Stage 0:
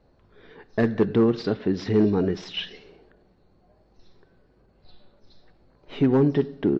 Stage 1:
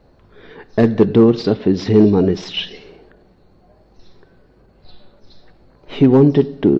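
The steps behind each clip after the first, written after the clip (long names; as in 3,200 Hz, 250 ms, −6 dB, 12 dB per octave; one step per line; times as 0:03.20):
dynamic equaliser 1,600 Hz, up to −7 dB, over −47 dBFS, Q 1.6
level +9 dB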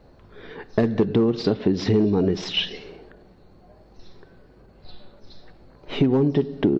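downward compressor 6 to 1, threshold −16 dBFS, peak gain reduction 10 dB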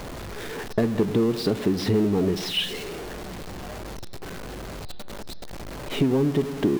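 converter with a step at zero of −27 dBFS
level −3.5 dB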